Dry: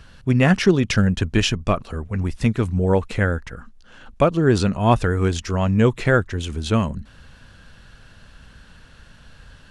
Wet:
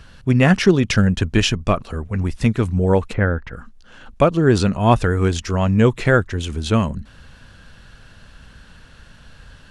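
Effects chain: 3.12–3.52 s: low-pass 1.6 kHz -> 3.5 kHz 12 dB/octave; trim +2 dB

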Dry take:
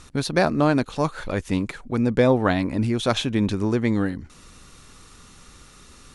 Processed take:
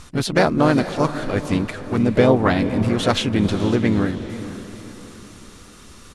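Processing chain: harmony voices -3 st -7 dB, +3 st -13 dB, +4 st -14 dB; echo that smears into a reverb 489 ms, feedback 44%, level -12.5 dB; trim +2 dB

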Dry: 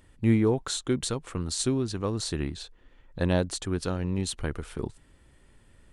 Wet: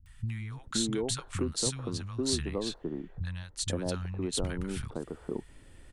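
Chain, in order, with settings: compression 6:1, threshold -32 dBFS, peak gain reduction 14 dB; three bands offset in time lows, highs, mids 60/520 ms, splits 160/1100 Hz; 1.97–4.39 s: three bands expanded up and down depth 40%; trim +4.5 dB

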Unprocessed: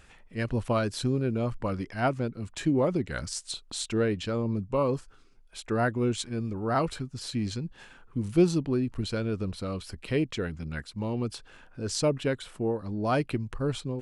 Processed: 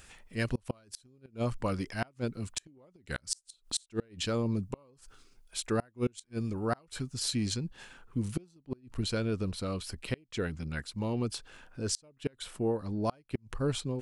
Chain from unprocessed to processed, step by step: treble shelf 4.2 kHz +12 dB, from 7.54 s +6.5 dB; inverted gate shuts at -18 dBFS, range -33 dB; trim -1.5 dB

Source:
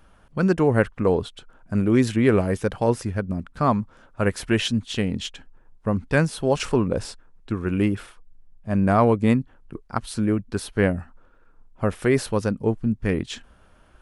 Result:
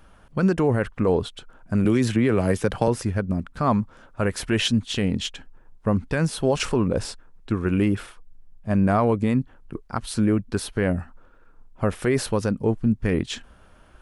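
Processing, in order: peak limiter -13.5 dBFS, peak gain reduction 9 dB; 1.85–2.88 s: three bands compressed up and down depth 70%; trim +2.5 dB

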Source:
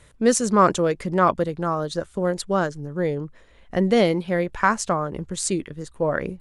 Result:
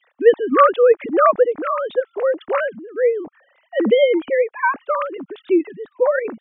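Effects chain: formants replaced by sine waves; 0.57–1.52 s: dynamic bell 670 Hz, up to +4 dB, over -33 dBFS, Q 1.6; trim +4 dB

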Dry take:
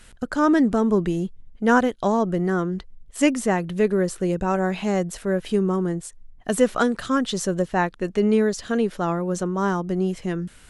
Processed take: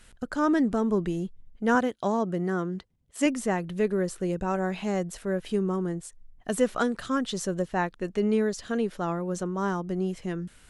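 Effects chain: 1.75–3.26 s: high-pass 90 Hz 12 dB/octave; trim -5.5 dB

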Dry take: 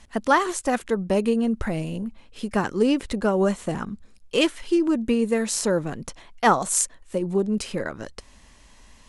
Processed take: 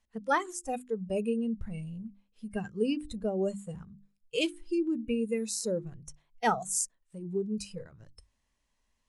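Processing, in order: spectral noise reduction 18 dB; hum notches 50/100/150/200/250/300/350 Hz; trim -8 dB

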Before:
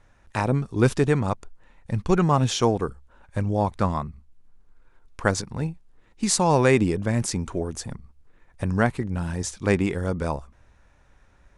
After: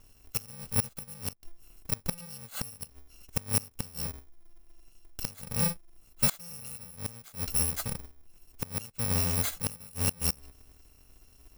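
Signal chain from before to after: bit-reversed sample order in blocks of 128 samples; inverted gate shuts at -14 dBFS, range -25 dB

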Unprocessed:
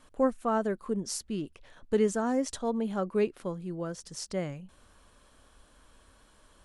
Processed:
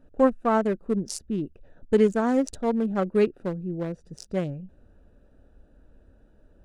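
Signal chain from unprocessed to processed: local Wiener filter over 41 samples; trim +6.5 dB

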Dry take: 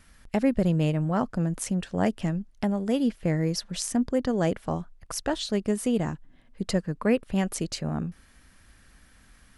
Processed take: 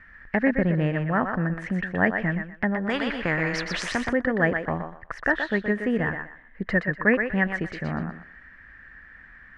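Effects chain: resonant low-pass 1.8 kHz, resonance Q 9.1; thinning echo 122 ms, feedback 27%, high-pass 380 Hz, level -5.5 dB; 2.89–4.13 s: spectrum-flattening compressor 2:1

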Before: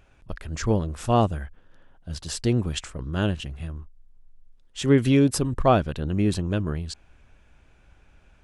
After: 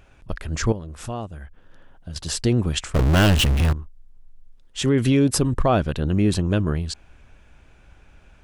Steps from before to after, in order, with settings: 0.72–2.16 s: compression 3:1, threshold -38 dBFS, peak gain reduction 17 dB; peak limiter -15 dBFS, peak gain reduction 8 dB; 2.94–3.73 s: power-law waveshaper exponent 0.35; trim +5 dB

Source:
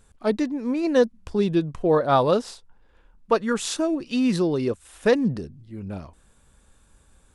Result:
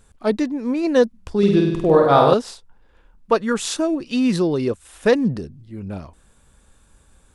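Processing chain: 1.38–2.34 s: flutter echo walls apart 8.5 m, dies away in 0.88 s; trim +3 dB

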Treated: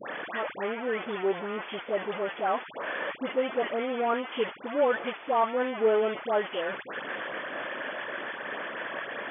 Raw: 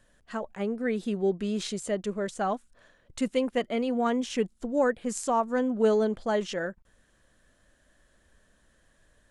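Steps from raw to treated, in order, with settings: one-bit delta coder 64 kbps, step -25 dBFS; three-band isolator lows -22 dB, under 310 Hz, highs -14 dB, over 2.7 kHz; phase dispersion highs, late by 98 ms, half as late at 1.4 kHz; FFT band-pass 110–3500 Hz; trim +1.5 dB

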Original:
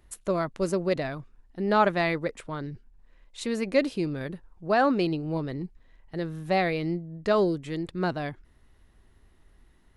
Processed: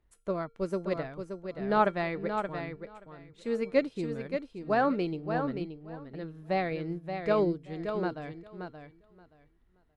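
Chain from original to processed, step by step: treble shelf 4.3 kHz -11.5 dB; feedback comb 460 Hz, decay 0.35 s, harmonics odd, mix 70%; feedback delay 576 ms, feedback 23%, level -5 dB; upward expansion 1.5:1, over -49 dBFS; trim +8.5 dB

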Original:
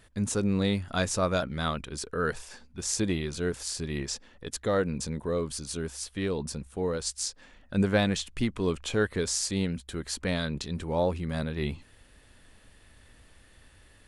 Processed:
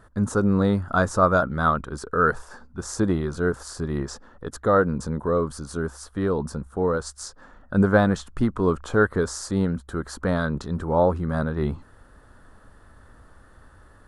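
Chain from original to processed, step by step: resonant high shelf 1.8 kHz -10 dB, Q 3; trim +6 dB

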